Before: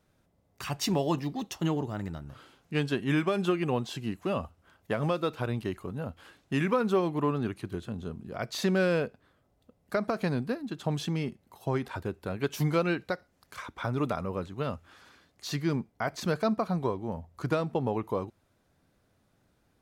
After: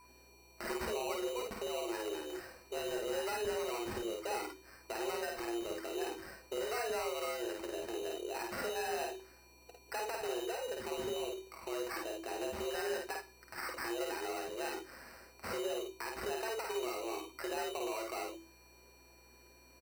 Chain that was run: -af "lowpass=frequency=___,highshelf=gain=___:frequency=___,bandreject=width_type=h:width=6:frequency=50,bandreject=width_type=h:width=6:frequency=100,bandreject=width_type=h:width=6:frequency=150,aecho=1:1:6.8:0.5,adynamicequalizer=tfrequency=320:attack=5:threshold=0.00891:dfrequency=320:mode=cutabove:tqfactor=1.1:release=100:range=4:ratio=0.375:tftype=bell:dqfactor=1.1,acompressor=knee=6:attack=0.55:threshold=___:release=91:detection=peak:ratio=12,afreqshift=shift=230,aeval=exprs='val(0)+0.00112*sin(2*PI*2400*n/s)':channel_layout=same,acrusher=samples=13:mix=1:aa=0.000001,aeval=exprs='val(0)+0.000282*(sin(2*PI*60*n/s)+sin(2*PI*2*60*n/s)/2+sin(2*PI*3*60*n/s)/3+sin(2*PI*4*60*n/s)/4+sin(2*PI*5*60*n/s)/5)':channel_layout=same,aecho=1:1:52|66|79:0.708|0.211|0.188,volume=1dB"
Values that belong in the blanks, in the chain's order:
9.6k, -10, 6.5k, -35dB